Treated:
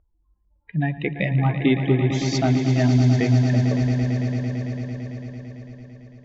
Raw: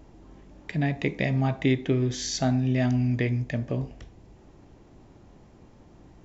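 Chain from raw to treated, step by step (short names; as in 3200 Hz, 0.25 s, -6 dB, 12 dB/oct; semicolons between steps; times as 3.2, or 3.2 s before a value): per-bin expansion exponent 2; spectral noise reduction 9 dB; low-pass opened by the level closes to 1500 Hz, open at -23.5 dBFS; on a send: swelling echo 0.112 s, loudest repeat 5, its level -11.5 dB; on the sum: gain +6.5 dB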